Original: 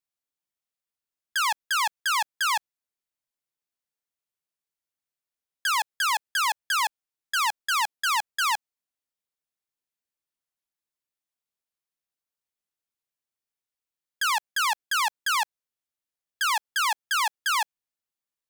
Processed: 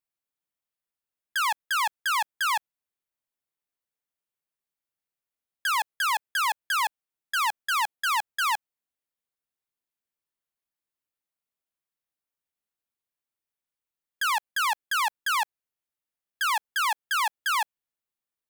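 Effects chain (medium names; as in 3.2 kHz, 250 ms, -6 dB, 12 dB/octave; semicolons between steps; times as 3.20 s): peaking EQ 5.7 kHz -5 dB 1.4 oct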